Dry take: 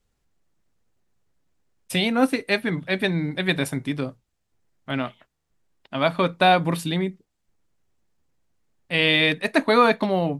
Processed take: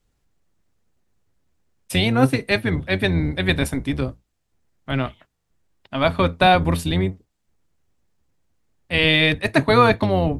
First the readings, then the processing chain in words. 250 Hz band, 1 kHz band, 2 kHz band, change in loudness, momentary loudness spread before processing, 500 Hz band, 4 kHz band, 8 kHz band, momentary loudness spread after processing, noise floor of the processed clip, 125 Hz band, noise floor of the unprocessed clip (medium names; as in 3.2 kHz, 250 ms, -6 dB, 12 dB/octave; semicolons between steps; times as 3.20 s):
+2.5 dB, +2.0 dB, +2.0 dB, +2.5 dB, 12 LU, +2.0 dB, +2.0 dB, +2.0 dB, 11 LU, -73 dBFS, +7.0 dB, -75 dBFS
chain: octave divider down 1 oct, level -1 dB; trim +2 dB